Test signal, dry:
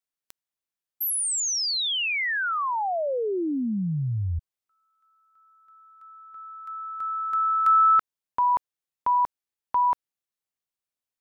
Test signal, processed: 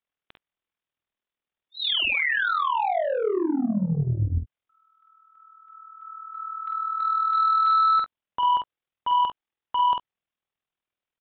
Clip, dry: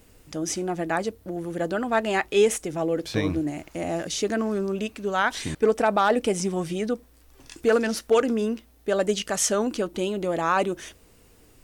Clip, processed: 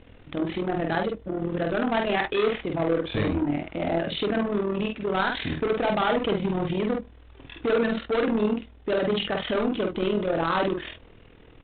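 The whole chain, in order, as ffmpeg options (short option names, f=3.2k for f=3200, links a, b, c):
-af "tremolo=f=40:d=0.75,aresample=8000,asoftclip=type=tanh:threshold=-28dB,aresample=44100,aecho=1:1:48|67:0.668|0.126,volume=7dB"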